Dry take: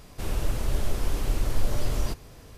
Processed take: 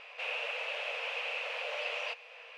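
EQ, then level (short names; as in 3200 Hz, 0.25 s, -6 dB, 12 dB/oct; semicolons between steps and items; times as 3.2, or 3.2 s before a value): dynamic EQ 1300 Hz, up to -4 dB, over -54 dBFS, Q 0.77; brick-wall FIR high-pass 450 Hz; synth low-pass 2600 Hz, resonance Q 7.4; 0.0 dB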